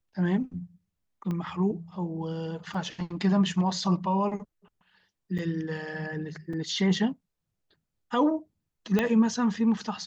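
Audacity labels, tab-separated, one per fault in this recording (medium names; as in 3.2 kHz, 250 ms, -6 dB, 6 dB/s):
1.310000	1.310000	pop -22 dBFS
2.740000	2.740000	dropout 4.6 ms
5.380000	5.390000	dropout 6.7 ms
6.530000	6.530000	dropout 3.7 ms
8.990000	8.990000	pop -12 dBFS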